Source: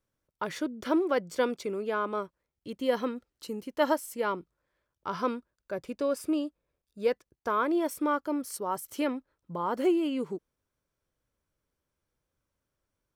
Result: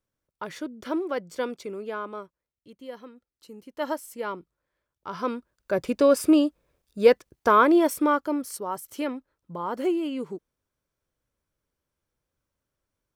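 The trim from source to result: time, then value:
1.89 s -2 dB
3.09 s -14 dB
3.99 s -2 dB
5.08 s -2 dB
5.80 s +10.5 dB
7.55 s +10.5 dB
8.76 s 0 dB

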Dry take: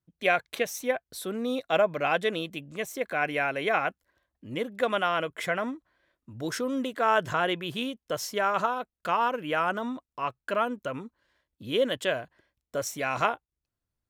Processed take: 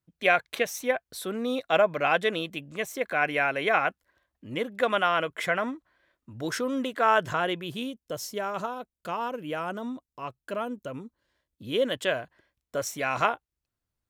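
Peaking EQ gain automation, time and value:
peaking EQ 1.6 kHz 2.6 oct
7.05 s +3 dB
8.00 s -8 dB
11.02 s -8 dB
12.09 s +1.5 dB

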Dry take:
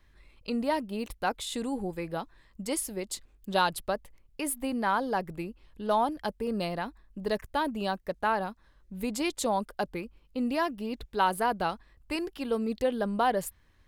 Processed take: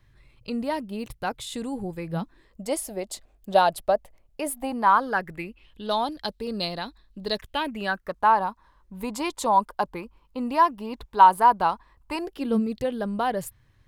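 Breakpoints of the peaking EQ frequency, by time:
peaking EQ +14.5 dB 0.59 oct
2.06 s 120 Hz
2.63 s 670 Hz
4.53 s 670 Hz
5.93 s 4 kHz
7.35 s 4 kHz
8.23 s 980 Hz
12.15 s 980 Hz
12.72 s 120 Hz

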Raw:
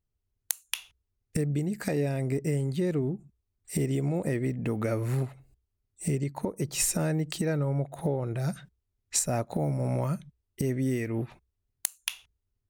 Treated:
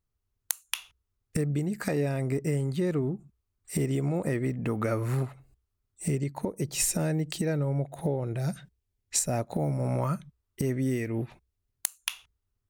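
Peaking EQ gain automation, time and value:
peaking EQ 1.2 kHz 0.71 oct
6.03 s +6 dB
6.53 s -3.5 dB
9.36 s -3.5 dB
10.10 s +7.5 dB
10.61 s +7.5 dB
11.19 s -4 dB
12.10 s +6 dB

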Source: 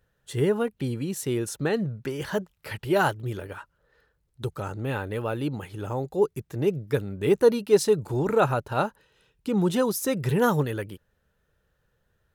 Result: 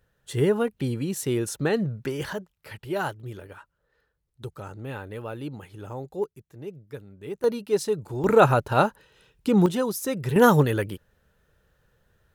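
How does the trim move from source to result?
+1.5 dB
from 2.33 s -6 dB
from 6.24 s -13.5 dB
from 7.44 s -4.5 dB
from 8.24 s +5 dB
from 9.66 s -2 dB
from 10.36 s +5.5 dB

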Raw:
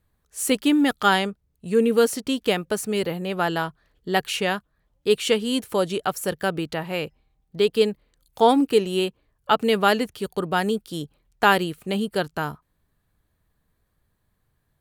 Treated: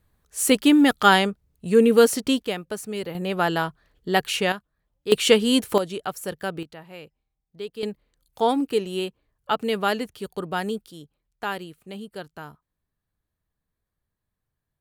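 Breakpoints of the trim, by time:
+3 dB
from 2.42 s -6 dB
from 3.15 s +1 dB
from 4.52 s -6.5 dB
from 5.12 s +4.5 dB
from 5.78 s -5 dB
from 6.63 s -14 dB
from 7.83 s -4.5 dB
from 10.91 s -12 dB

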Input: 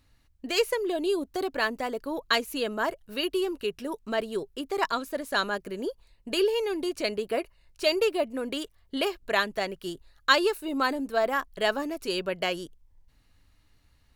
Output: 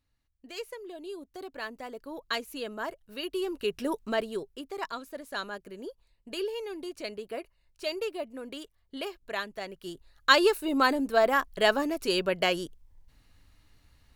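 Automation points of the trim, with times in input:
1.00 s -14 dB
2.35 s -7 dB
3.22 s -7 dB
3.87 s +3.5 dB
4.77 s -8.5 dB
9.60 s -8.5 dB
10.46 s +2.5 dB

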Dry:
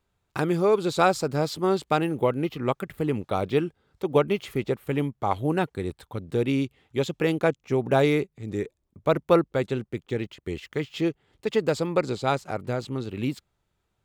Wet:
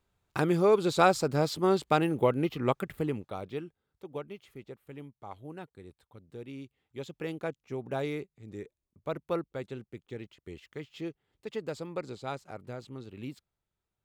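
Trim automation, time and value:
2.94 s -2 dB
3.33 s -12 dB
4.36 s -19 dB
6.50 s -19 dB
7.21 s -12.5 dB

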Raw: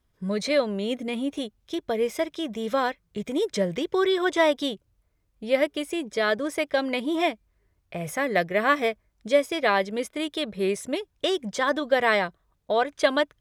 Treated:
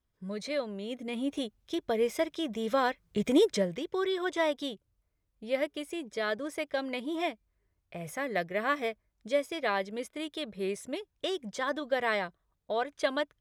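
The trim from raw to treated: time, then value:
0.89 s -10 dB
1.31 s -3 dB
2.82 s -3 dB
3.35 s +4 dB
3.75 s -8 dB

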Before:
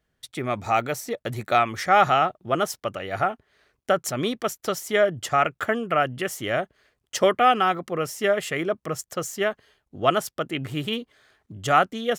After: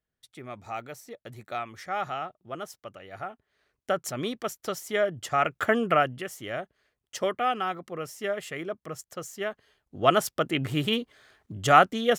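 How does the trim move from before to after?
3.22 s -13.5 dB
3.94 s -5.5 dB
5.27 s -5.5 dB
5.86 s +3 dB
6.26 s -8.5 dB
9.37 s -8.5 dB
10.25 s +1.5 dB

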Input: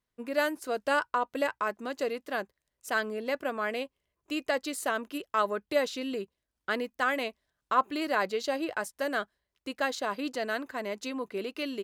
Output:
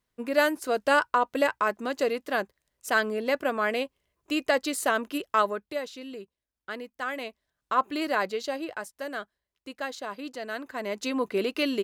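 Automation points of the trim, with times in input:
5.35 s +5 dB
5.80 s -6 dB
6.85 s -6 dB
8.02 s +2.5 dB
8.93 s -4 dB
10.43 s -4 dB
11.21 s +7.5 dB

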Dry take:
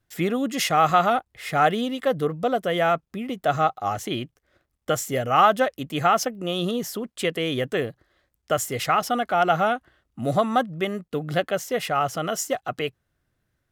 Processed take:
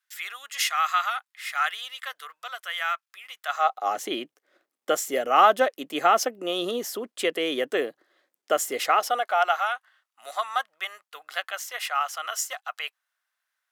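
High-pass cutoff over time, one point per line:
high-pass 24 dB/octave
3.43 s 1.2 kHz
3.95 s 290 Hz
8.75 s 290 Hz
9.65 s 920 Hz

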